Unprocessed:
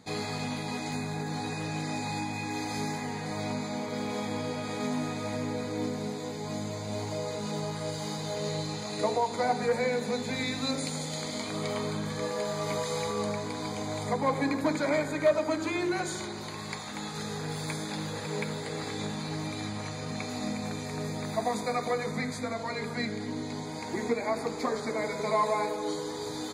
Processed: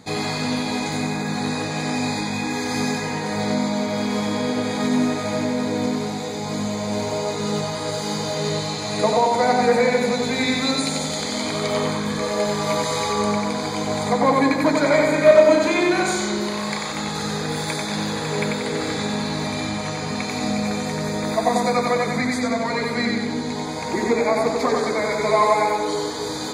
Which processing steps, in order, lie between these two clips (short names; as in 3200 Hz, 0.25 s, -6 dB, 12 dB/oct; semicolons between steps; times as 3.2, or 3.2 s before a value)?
15.08–16.93 doubler 34 ms -5 dB; analogue delay 92 ms, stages 4096, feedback 49%, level -3 dB; gain +8.5 dB